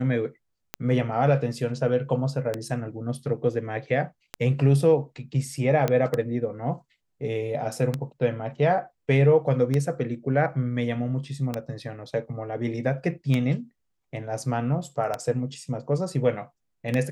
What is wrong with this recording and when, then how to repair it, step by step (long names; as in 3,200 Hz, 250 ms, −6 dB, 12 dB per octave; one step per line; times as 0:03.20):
scratch tick 33 1/3 rpm −12 dBFS
0:05.88: click −11 dBFS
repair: click removal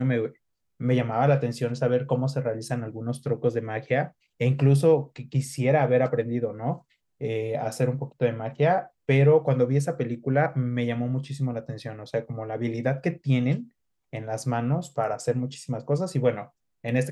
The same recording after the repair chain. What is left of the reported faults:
none of them is left